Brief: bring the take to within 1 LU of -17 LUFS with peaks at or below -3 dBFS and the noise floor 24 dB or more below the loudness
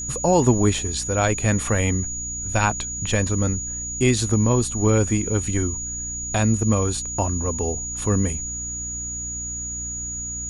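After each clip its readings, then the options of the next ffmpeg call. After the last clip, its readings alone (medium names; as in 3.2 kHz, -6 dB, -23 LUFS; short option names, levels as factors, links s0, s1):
hum 60 Hz; highest harmonic 300 Hz; hum level -35 dBFS; steady tone 6.8 kHz; tone level -28 dBFS; loudness -22.5 LUFS; peak level -4.0 dBFS; loudness target -17.0 LUFS
-> -af "bandreject=f=60:t=h:w=6,bandreject=f=120:t=h:w=6,bandreject=f=180:t=h:w=6,bandreject=f=240:t=h:w=6,bandreject=f=300:t=h:w=6"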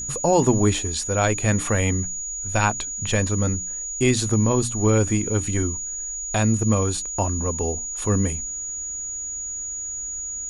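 hum not found; steady tone 6.8 kHz; tone level -28 dBFS
-> -af "bandreject=f=6800:w=30"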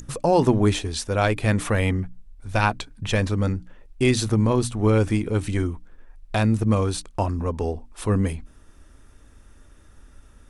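steady tone not found; loudness -23.0 LUFS; peak level -6.0 dBFS; loudness target -17.0 LUFS
-> -af "volume=2,alimiter=limit=0.708:level=0:latency=1"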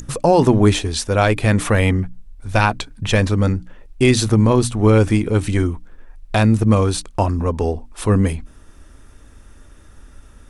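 loudness -17.5 LUFS; peak level -3.0 dBFS; noise floor -45 dBFS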